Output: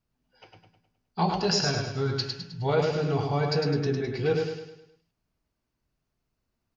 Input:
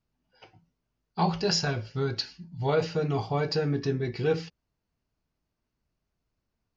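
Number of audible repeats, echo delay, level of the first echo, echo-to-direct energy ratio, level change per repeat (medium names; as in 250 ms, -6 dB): 5, 104 ms, -4.0 dB, -3.0 dB, -7.0 dB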